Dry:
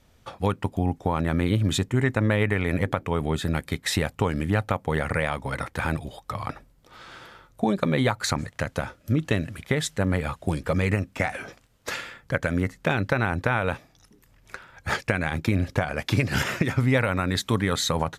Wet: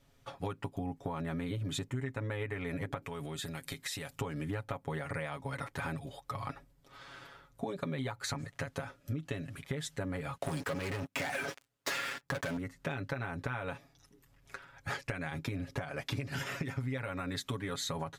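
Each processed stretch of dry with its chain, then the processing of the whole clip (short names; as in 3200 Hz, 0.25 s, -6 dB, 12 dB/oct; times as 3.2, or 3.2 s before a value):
3.02–4.21 high shelf 2400 Hz +10.5 dB + compressor, threshold -29 dBFS
10.37–12.57 sample leveller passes 5 + HPF 170 Hz 6 dB/oct + compressor 3:1, threshold -17 dBFS
whole clip: comb 7.2 ms, depth 75%; compressor, threshold -25 dBFS; gain -8.5 dB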